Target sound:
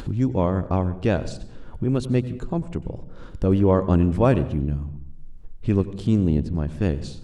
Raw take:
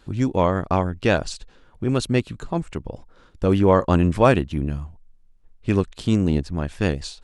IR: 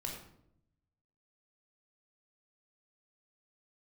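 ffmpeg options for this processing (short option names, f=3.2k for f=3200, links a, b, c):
-filter_complex "[0:a]tiltshelf=f=670:g=5.5,acompressor=mode=upward:threshold=-17dB:ratio=2.5,asplit=2[a][b];[1:a]atrim=start_sample=2205,adelay=94[c];[b][c]afir=irnorm=-1:irlink=0,volume=-15dB[d];[a][d]amix=inputs=2:normalize=0,volume=-4.5dB"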